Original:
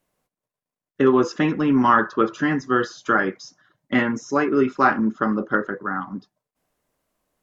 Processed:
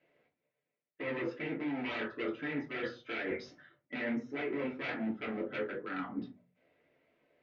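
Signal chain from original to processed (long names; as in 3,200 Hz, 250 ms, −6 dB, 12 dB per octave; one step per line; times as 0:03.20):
in parallel at −4 dB: gain into a clipping stage and back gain 19 dB
on the sum: flanger 1.4 Hz, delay 4.7 ms, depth 8.4 ms, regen −53%
wave folding −18.5 dBFS
loudspeaker in its box 190–3,200 Hz, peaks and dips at 190 Hz −5 dB, 550 Hz +3 dB, 1,100 Hz −10 dB, 2,200 Hz +9 dB
mains-hum notches 60/120/180/240 Hz
reversed playback
downward compressor 5 to 1, threshold −41 dBFS, peak gain reduction 18.5 dB
reversed playback
parametric band 840 Hz −4 dB 1.2 octaves
convolution reverb RT60 0.30 s, pre-delay 3 ms, DRR −3 dB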